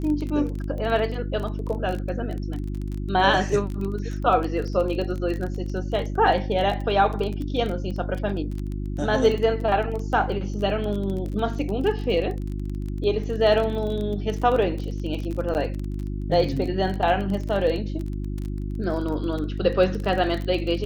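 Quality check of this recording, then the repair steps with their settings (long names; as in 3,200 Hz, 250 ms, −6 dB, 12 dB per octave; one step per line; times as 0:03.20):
surface crackle 24 per second −28 dBFS
mains hum 50 Hz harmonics 7 −29 dBFS
0:15.54–0:15.55: drop-out 9.4 ms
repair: click removal
hum removal 50 Hz, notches 7
repair the gap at 0:15.54, 9.4 ms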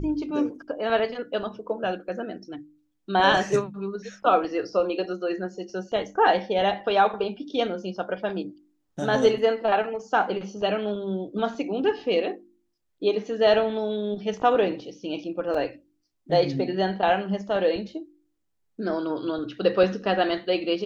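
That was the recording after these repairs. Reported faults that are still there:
none of them is left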